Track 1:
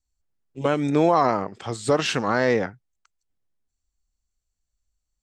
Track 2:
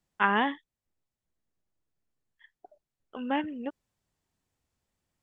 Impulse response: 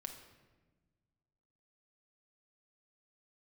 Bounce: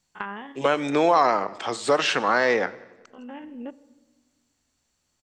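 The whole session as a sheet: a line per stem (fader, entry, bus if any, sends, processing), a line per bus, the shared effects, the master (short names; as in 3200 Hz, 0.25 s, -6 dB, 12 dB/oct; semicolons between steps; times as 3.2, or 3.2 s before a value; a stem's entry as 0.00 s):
+1.0 dB, 0.00 s, send -9 dB, echo send -20 dB, weighting filter A; three-band squash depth 40%
+2.5 dB, 0.00 s, send -7 dB, no echo send, stepped spectrum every 50 ms; compressor 6:1, threshold -35 dBFS, peak gain reduction 14.5 dB; auto duck -15 dB, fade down 0.25 s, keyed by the first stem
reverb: on, RT60 1.3 s, pre-delay 5 ms
echo: feedback echo 92 ms, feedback 56%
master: high shelf 8500 Hz -5 dB; ending taper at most 460 dB/s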